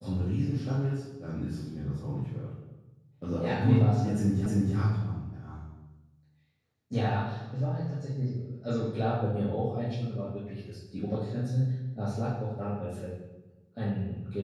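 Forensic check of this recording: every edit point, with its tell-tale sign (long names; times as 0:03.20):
0:04.46: the same again, the last 0.31 s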